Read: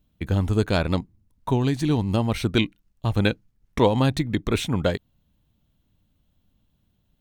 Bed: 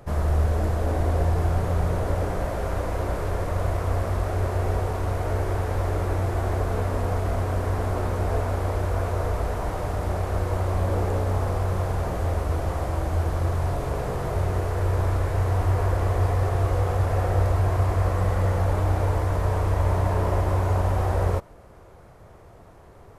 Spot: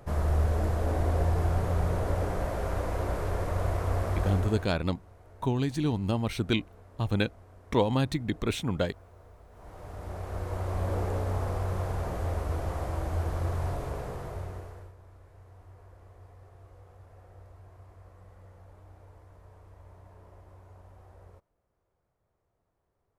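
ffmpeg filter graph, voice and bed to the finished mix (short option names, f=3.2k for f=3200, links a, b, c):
-filter_complex "[0:a]adelay=3950,volume=-6dB[a];[1:a]volume=18dB,afade=t=out:st=4.29:d=0.44:silence=0.0630957,afade=t=in:st=9.5:d=1.39:silence=0.0794328,afade=t=out:st=13.67:d=1.27:silence=0.0630957[b];[a][b]amix=inputs=2:normalize=0"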